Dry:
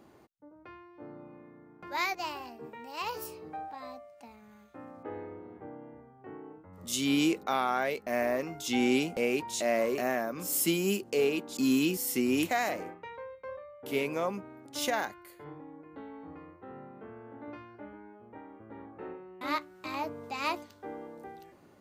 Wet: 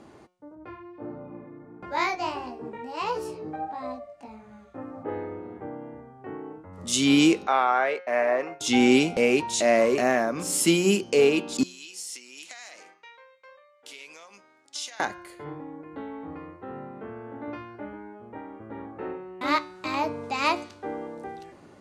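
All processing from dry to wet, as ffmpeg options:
-filter_complex "[0:a]asettb=1/sr,asplit=3[a][b][c];[a]atrim=end=0.554[d];[b]atrim=start=0.55:end=5.09,asetpts=PTS-STARTPTS,afade=t=in:d=0.004:c=qsin,afade=t=out:st=4.536:d=0.004:c=qsin,tiltshelf=f=1.4k:g=4.5,flanger=delay=15.5:depth=4.3:speed=1.5[e];[c]atrim=start=5.086[f];[d][e]acrossfade=d=0.004:c1=hsin:c2=qsin[g];[g][f]acrossfade=d=0.004:c1=qsin:c2=hsin,asettb=1/sr,asplit=3[h][i][j];[h]atrim=end=7.474[k];[i]atrim=start=7.47:end=8.61,asetpts=PTS-STARTPTS,afade=t=in:d=0.004:c=qsin,afade=t=out:st=1.136:d=0.004:c=qsin,agate=range=-33dB:threshold=-38dB:ratio=3:release=100:detection=peak,acrossover=split=390 2800:gain=0.141 1 0.2[l][m][n];[l][m][n]amix=inputs=3:normalize=0[o];[j]atrim=start=8.606[p];[k][o]acrossfade=d=0.004:c1=hsin:c2=qsin[q];[q][p]acrossfade=d=0.004:c1=qsin:c2=hsin,asettb=1/sr,asplit=3[r][s][t];[r]atrim=end=11.634[u];[s]atrim=start=11.63:end=15,asetpts=PTS-STARTPTS,afade=t=in:d=0.004:c=qsin,afade=t=out:st=3.366:d=0.004:c=qsin,acompressor=threshold=-34dB:ratio=12:attack=3.2:release=140:knee=1:detection=peak,bandpass=f=5.7k:t=q:w=0.92[v];[t]atrim=start=14.996[w];[u][v]acrossfade=d=0.004:c1=hsin:c2=qsin[x];[x][w]acrossfade=d=0.004:c1=qsin:c2=hsin,lowpass=f=9.9k:w=0.5412,lowpass=f=9.9k:w=1.3066,bandreject=f=180.1:t=h:w=4,bandreject=f=360.2:t=h:w=4,bandreject=f=540.3:t=h:w=4,bandreject=f=720.4:t=h:w=4,bandreject=f=900.5:t=h:w=4,bandreject=f=1.0806k:t=h:w=4,bandreject=f=1.2607k:t=h:w=4,bandreject=f=1.4408k:t=h:w=4,bandreject=f=1.6209k:t=h:w=4,bandreject=f=1.801k:t=h:w=4,bandreject=f=1.9811k:t=h:w=4,bandreject=f=2.1612k:t=h:w=4,bandreject=f=2.3413k:t=h:w=4,bandreject=f=2.5214k:t=h:w=4,bandreject=f=2.7015k:t=h:w=4,bandreject=f=2.8816k:t=h:w=4,bandreject=f=3.0617k:t=h:w=4,bandreject=f=3.2418k:t=h:w=4,bandreject=f=3.4219k:t=h:w=4,bandreject=f=3.602k:t=h:w=4,bandreject=f=3.7821k:t=h:w=4,bandreject=f=3.9622k:t=h:w=4,bandreject=f=4.1423k:t=h:w=4,bandreject=f=4.3224k:t=h:w=4,bandreject=f=4.5025k:t=h:w=4,bandreject=f=4.6826k:t=h:w=4,bandreject=f=4.8627k:t=h:w=4,bandreject=f=5.0428k:t=h:w=4,bandreject=f=5.2229k:t=h:w=4,bandreject=f=5.403k:t=h:w=4,bandreject=f=5.5831k:t=h:w=4,bandreject=f=5.7632k:t=h:w=4,bandreject=f=5.9433k:t=h:w=4,bandreject=f=6.1234k:t=h:w=4,bandreject=f=6.3035k:t=h:w=4,bandreject=f=6.4836k:t=h:w=4,bandreject=f=6.6637k:t=h:w=4,volume=8dB"

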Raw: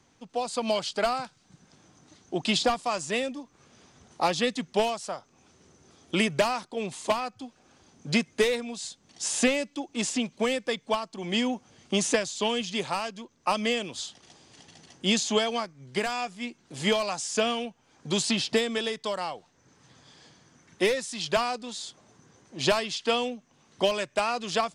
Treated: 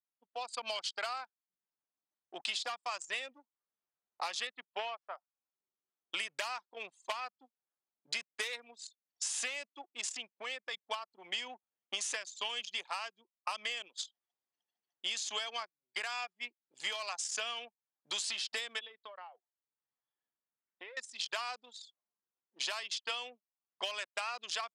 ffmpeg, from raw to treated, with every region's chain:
-filter_complex "[0:a]asettb=1/sr,asplit=3[a][b][c];[a]atrim=end=4.474[d];[b]atrim=start=4.47:end=5.15,asetpts=PTS-STARTPTS,afade=t=in:d=0.004:c=qsin,afade=t=out:st=0.676:d=0.004:c=qsin,aeval=exprs='sgn(val(0))*max(abs(val(0))-0.00211,0)':c=same,highpass=230,lowpass=2.8k[e];[c]atrim=start=5.146[f];[d][e]acrossfade=d=0.004:c1=hsin:c2=qsin[g];[g][f]acrossfade=d=0.004:c1=qsin:c2=hsin,asettb=1/sr,asplit=3[h][i][j];[h]atrim=end=9.814[k];[i]atrim=start=9.81:end=10.79,asetpts=PTS-STARTPTS,afade=t=in:d=0.004:c=qsin,afade=t=out:st=0.976:d=0.004:c=qsin,acompressor=threshold=-30dB:ratio=2:attack=3.2:release=140:knee=1:detection=peak,asoftclip=type=hard:threshold=-22.5dB[l];[j]atrim=start=10.786[m];[k][l]acrossfade=d=0.004:c1=hsin:c2=qsin[n];[n][m]acrossfade=d=0.004:c1=qsin:c2=hsin,asettb=1/sr,asplit=3[o][p][q];[o]atrim=end=18.794[r];[p]atrim=start=18.79:end=20.97,asetpts=PTS-STARTPTS,afade=t=in:d=0.004:c=qsin,afade=t=out:st=2.176:d=0.004:c=qsin,lowpass=f=3.9k:w=0.5412,lowpass=f=3.9k:w=1.3066,acompressor=threshold=-33dB:ratio=6:attack=3.2:release=140:knee=1:detection=peak[s];[q]atrim=start=20.966[t];[r][s]acrossfade=d=0.004:c1=hsin:c2=qsin[u];[u][t]acrossfade=d=0.004:c1=qsin:c2=hsin,anlmdn=10,highpass=1.2k,acompressor=threshold=-34dB:ratio=6"

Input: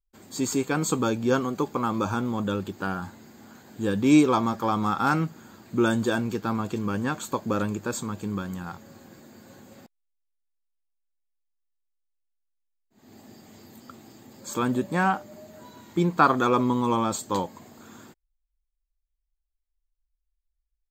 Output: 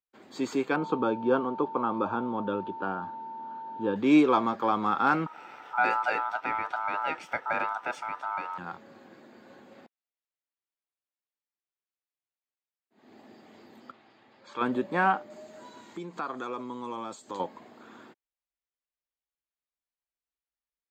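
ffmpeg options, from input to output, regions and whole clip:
-filter_complex "[0:a]asettb=1/sr,asplit=3[a][b][c];[a]atrim=end=0.764[d];[b]atrim=start=0.76:end=3.96,asetpts=PTS-STARTPTS,afade=t=in:d=0.004:c=qsin,afade=t=out:st=3.196:d=0.004:c=qsin,lowpass=2.7k,equalizer=f=2k:w=3.3:g=-14,aeval=exprs='val(0)+0.0141*sin(2*PI*900*n/s)':c=same[e];[c]atrim=start=3.956[f];[d][e]acrossfade=d=0.004:c1=hsin:c2=qsin[g];[g][f]acrossfade=d=0.004:c1=qsin:c2=hsin,asettb=1/sr,asplit=3[h][i][j];[h]atrim=end=5.264[k];[i]atrim=start=5.26:end=8.58,asetpts=PTS-STARTPTS,afade=t=in:d=0.004:c=qsin,afade=t=out:st=3.316:d=0.004:c=qsin,aeval=exprs='val(0)*sin(2*PI*1100*n/s)':c=same,acompressor=mode=upward:threshold=-36dB:ratio=2.5:attack=3.2:release=140:knee=2.83:detection=peak[l];[j]atrim=start=8.576[m];[k][l]acrossfade=d=0.004:c1=hsin:c2=qsin[n];[n][m]acrossfade=d=0.004:c1=qsin:c2=hsin,asettb=1/sr,asplit=3[o][p][q];[o]atrim=end=13.914[r];[p]atrim=start=13.91:end=14.61,asetpts=PTS-STARTPTS,afade=t=in:d=0.004:c=qsin,afade=t=out:st=0.696:d=0.004:c=qsin,lowpass=4k,equalizer=f=270:w=0.53:g=-11.5[s];[q]atrim=start=14.606[t];[r][s]acrossfade=d=0.004:c1=hsin:c2=qsin[u];[u][t]acrossfade=d=0.004:c1=qsin:c2=hsin,asettb=1/sr,asplit=3[v][w][x];[v]atrim=end=15.304[y];[w]atrim=start=15.3:end=17.4,asetpts=PTS-STARTPTS,afade=t=in:d=0.004:c=qsin,afade=t=out:st=2.096:d=0.004:c=qsin,equalizer=f=7.5k:t=o:w=1.1:g=14,acompressor=threshold=-35dB:ratio=3:attack=3.2:release=140:knee=1:detection=peak[z];[x]atrim=start=17.396[aa];[y][z]acrossfade=d=0.004:c1=hsin:c2=qsin[ab];[ab][aa]acrossfade=d=0.004:c1=qsin:c2=hsin,highpass=110,acrossover=split=250 4000:gain=0.251 1 0.0794[ac][ad][ae];[ac][ad][ae]amix=inputs=3:normalize=0"

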